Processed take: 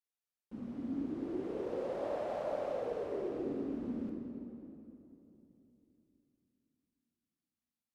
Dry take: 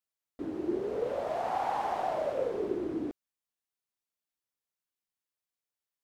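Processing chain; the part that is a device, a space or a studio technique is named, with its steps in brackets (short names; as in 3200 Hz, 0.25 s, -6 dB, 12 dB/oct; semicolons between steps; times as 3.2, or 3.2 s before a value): slowed and reverbed (varispeed -24%; reverb RT60 3.1 s, pre-delay 3 ms, DRR 1 dB); gain -8.5 dB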